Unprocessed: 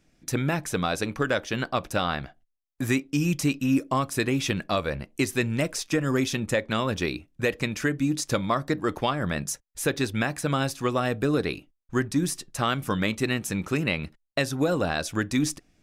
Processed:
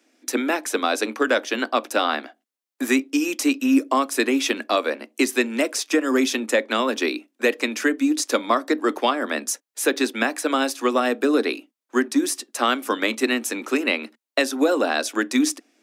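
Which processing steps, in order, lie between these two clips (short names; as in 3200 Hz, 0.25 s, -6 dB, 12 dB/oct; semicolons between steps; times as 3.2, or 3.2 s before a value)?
steep high-pass 230 Hz 96 dB/oct; gain +5.5 dB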